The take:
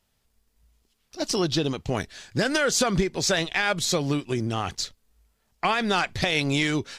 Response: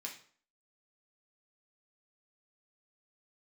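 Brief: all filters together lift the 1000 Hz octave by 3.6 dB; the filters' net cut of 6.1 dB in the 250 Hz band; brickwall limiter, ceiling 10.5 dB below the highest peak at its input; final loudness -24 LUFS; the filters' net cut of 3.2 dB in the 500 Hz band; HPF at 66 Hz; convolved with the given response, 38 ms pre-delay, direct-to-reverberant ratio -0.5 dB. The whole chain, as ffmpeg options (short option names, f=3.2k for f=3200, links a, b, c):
-filter_complex "[0:a]highpass=66,equalizer=f=250:t=o:g=-8,equalizer=f=500:t=o:g=-3.5,equalizer=f=1k:t=o:g=6.5,alimiter=limit=-18.5dB:level=0:latency=1,asplit=2[a][b];[1:a]atrim=start_sample=2205,adelay=38[c];[b][c]afir=irnorm=-1:irlink=0,volume=2dB[d];[a][d]amix=inputs=2:normalize=0,volume=2.5dB"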